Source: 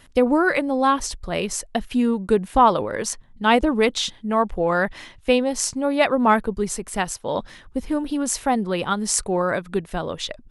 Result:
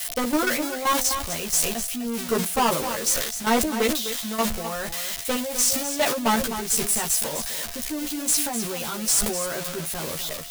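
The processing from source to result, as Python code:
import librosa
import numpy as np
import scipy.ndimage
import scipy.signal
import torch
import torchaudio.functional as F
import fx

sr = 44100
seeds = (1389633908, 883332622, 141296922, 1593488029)

y = x + 0.5 * 10.0 ** (-9.5 / 20.0) * np.diff(np.sign(x), prepend=np.sign(x[:1]))
y = fx.high_shelf(y, sr, hz=8900.0, db=-3.0)
y = fx.level_steps(y, sr, step_db=16)
y = np.clip(10.0 ** (20.0 / 20.0) * y, -1.0, 1.0) / 10.0 ** (20.0 / 20.0)
y = fx.doubler(y, sr, ms=13.0, db=-2)
y = y + 10.0 ** (-10.0 / 20.0) * np.pad(y, (int(255 * sr / 1000.0), 0))[:len(y)]
y = y + 10.0 ** (-52.0 / 20.0) * np.sin(2.0 * np.pi * 690.0 * np.arange(len(y)) / sr)
y = fx.sustainer(y, sr, db_per_s=58.0)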